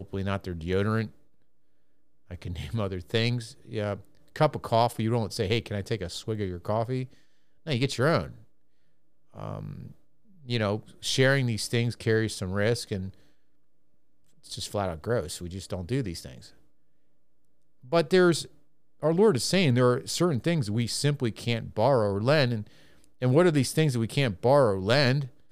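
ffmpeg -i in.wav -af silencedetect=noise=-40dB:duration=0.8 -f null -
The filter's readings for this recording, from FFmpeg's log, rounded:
silence_start: 1.08
silence_end: 2.31 | silence_duration: 1.22
silence_start: 8.32
silence_end: 9.36 | silence_duration: 1.04
silence_start: 13.10
silence_end: 14.46 | silence_duration: 1.36
silence_start: 16.46
silence_end: 17.92 | silence_duration: 1.46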